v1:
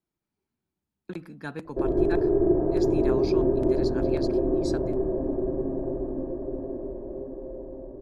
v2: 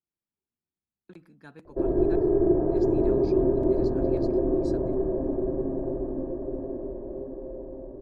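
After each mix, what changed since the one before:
speech −12.0 dB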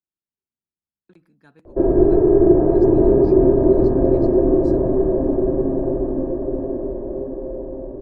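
speech −4.0 dB
background +9.0 dB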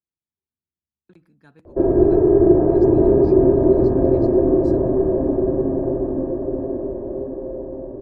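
background: add low-shelf EQ 100 Hz −9 dB
master: add parametric band 80 Hz +7.5 dB 1.4 octaves

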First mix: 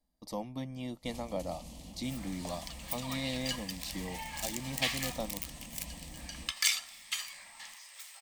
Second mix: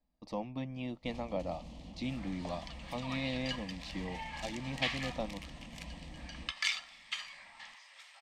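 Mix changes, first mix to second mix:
speech: remove notch filter 2,600 Hz, Q 6.2
master: add low-pass filter 3,500 Hz 12 dB per octave

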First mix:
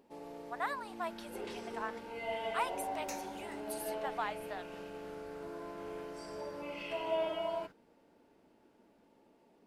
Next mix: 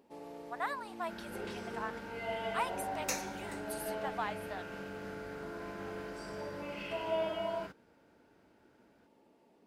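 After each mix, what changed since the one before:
second sound +9.5 dB
master: add high-pass filter 42 Hz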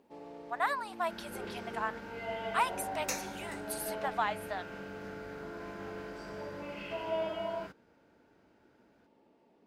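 speech +5.5 dB
first sound: add high-frequency loss of the air 78 metres

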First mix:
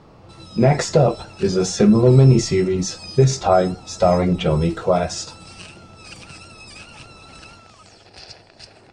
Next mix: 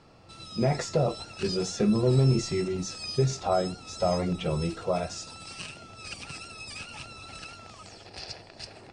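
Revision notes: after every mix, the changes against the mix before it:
speech −10.5 dB
master: add notch filter 1,500 Hz, Q 18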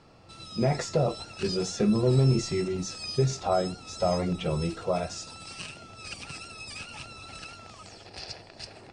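nothing changed

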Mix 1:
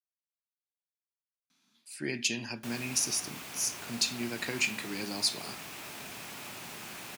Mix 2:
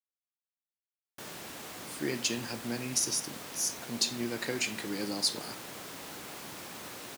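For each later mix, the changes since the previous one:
background: entry −1.45 s
master: add thirty-one-band graphic EQ 315 Hz +4 dB, 500 Hz +7 dB, 2,500 Hz −6 dB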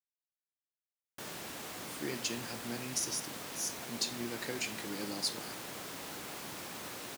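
speech −5.5 dB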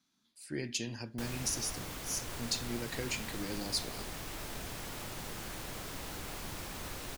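speech: entry −1.50 s
master: remove high-pass filter 180 Hz 12 dB per octave

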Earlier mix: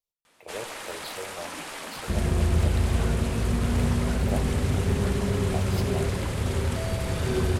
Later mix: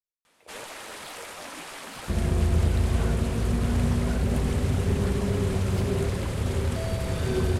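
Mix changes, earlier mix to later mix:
speech −8.5 dB
reverb: off

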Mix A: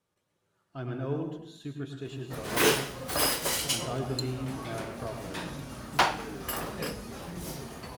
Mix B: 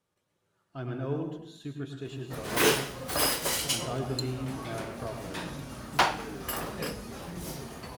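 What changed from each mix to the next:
nothing changed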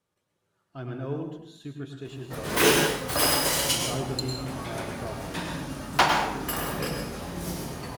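background: send on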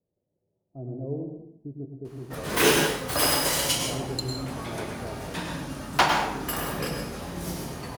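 speech: add Butterworth low-pass 680 Hz 36 dB per octave

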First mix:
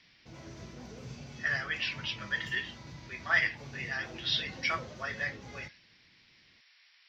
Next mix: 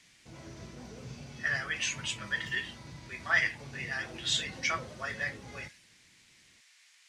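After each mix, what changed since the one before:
speech: remove linear-phase brick-wall low-pass 5,700 Hz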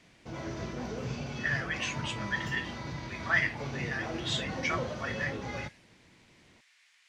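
background +11.5 dB
master: add bass and treble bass −4 dB, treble −8 dB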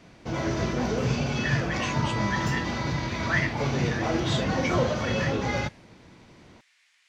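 background +10.5 dB

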